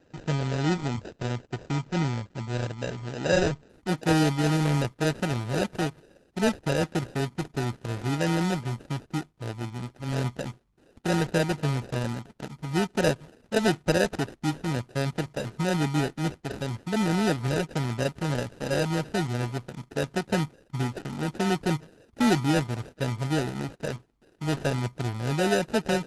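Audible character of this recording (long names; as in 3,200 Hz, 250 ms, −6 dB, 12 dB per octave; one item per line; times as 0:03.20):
aliases and images of a low sample rate 1,100 Hz, jitter 0%
Opus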